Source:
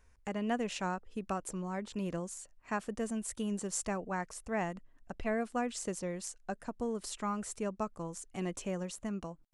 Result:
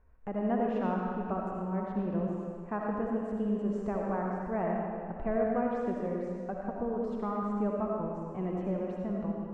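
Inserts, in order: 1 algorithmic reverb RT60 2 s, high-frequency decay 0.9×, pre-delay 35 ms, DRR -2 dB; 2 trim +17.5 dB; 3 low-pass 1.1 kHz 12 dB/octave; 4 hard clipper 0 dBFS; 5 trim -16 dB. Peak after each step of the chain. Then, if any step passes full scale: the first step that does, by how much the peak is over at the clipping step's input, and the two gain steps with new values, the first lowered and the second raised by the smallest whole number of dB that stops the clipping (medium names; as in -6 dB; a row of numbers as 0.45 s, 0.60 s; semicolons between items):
-18.5 dBFS, -1.0 dBFS, -2.0 dBFS, -2.0 dBFS, -18.0 dBFS; nothing clips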